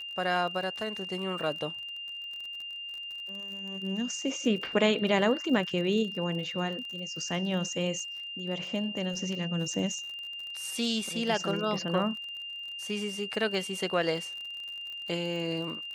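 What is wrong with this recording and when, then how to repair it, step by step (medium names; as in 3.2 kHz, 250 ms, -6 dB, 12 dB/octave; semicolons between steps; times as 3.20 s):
crackle 40 per s -38 dBFS
whine 2.8 kHz -37 dBFS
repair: de-click; band-stop 2.8 kHz, Q 30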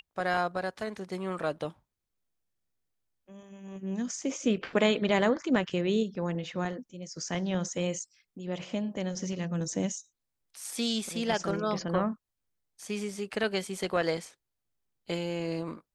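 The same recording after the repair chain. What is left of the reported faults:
nothing left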